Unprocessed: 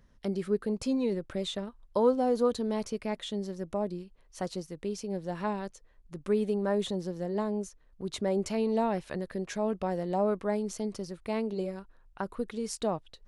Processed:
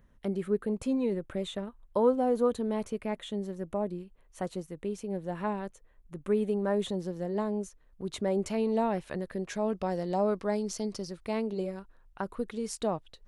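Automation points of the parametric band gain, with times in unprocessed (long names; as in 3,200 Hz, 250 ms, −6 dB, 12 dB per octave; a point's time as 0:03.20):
parametric band 5,000 Hz 0.7 octaves
0:06.20 −12.5 dB
0:07.01 −4.5 dB
0:09.37 −4.5 dB
0:10.00 +6.5 dB
0:10.94 +6.5 dB
0:11.53 −2.5 dB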